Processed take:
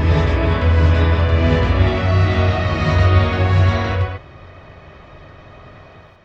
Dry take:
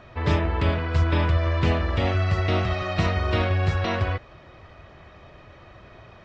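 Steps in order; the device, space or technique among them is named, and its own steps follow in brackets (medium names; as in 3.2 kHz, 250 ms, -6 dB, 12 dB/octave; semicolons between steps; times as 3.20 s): reverse reverb (reverse; reverberation RT60 2.0 s, pre-delay 84 ms, DRR -6.5 dB; reverse); trim -1 dB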